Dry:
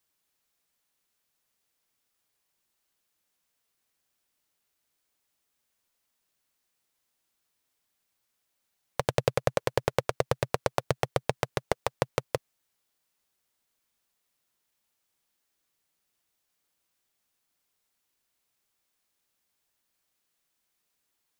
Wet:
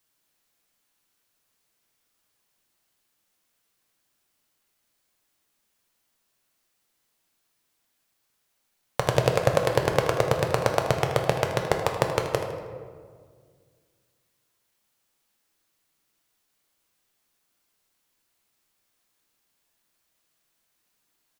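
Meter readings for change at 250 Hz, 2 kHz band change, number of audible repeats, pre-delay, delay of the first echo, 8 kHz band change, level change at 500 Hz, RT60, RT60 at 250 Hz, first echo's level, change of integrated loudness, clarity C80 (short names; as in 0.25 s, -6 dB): +6.5 dB, +5.5 dB, 1, 8 ms, 79 ms, +4.5 dB, +5.5 dB, 1.8 s, 2.5 s, -12.5 dB, +5.5 dB, 6.5 dB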